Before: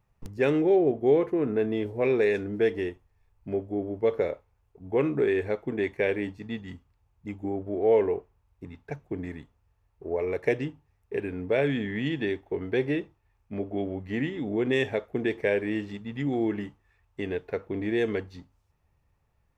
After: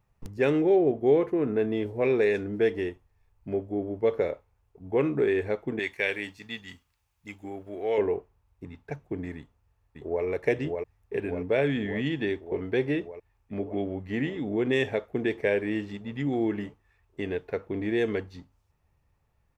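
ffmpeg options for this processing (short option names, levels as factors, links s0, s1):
-filter_complex "[0:a]asettb=1/sr,asplit=3[s0][s1][s2];[s0]atrim=end=5.794[s3];[s1]atrim=start=5.79:end=7.98,asetpts=PTS-STARTPTS,afade=t=in:d=0.004:c=qsin,afade=t=out:st=2.186:d=0.004:c=qsin,tiltshelf=f=1200:g=-9.5[s4];[s2]atrim=start=7.976[s5];[s3][s4]acrossfade=d=0.004:c1=hsin:c2=qsin[s6];[s6][s5]acrossfade=d=0.004:c1=qsin:c2=hsin,asplit=2[s7][s8];[s8]afade=t=in:st=9.36:d=0.01,afade=t=out:st=10.24:d=0.01,aecho=0:1:590|1180|1770|2360|2950|3540|4130|4720|5310|5900|6490|7080:0.668344|0.501258|0.375943|0.281958|0.211468|0.158601|0.118951|0.0892131|0.0669099|0.0501824|0.0376368|0.0282276[s9];[s7][s9]amix=inputs=2:normalize=0"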